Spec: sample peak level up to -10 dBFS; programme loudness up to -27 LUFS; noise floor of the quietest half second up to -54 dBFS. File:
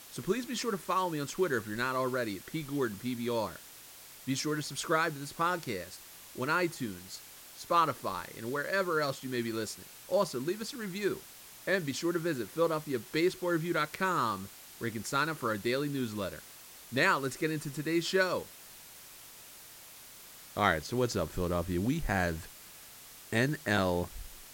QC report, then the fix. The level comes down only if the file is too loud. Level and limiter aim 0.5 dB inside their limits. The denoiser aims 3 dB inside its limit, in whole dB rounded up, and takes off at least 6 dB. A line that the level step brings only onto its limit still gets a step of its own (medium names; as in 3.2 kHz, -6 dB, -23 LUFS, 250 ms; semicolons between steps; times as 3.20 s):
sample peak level -12.0 dBFS: pass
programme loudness -32.5 LUFS: pass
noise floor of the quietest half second -52 dBFS: fail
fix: noise reduction 6 dB, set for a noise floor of -52 dBFS